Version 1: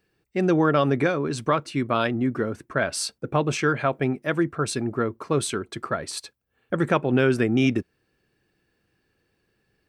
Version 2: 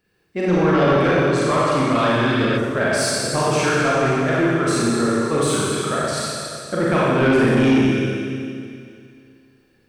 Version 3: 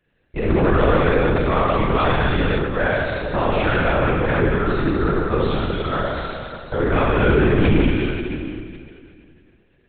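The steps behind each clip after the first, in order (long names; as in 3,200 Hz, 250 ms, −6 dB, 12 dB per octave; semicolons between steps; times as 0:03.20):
four-comb reverb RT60 2.4 s, combs from 30 ms, DRR −7.5 dB; healed spectral selection 0:02.20–0:02.55, 1,200–5,400 Hz before; soft clipping −10 dBFS, distortion −15 dB
linear-prediction vocoder at 8 kHz whisper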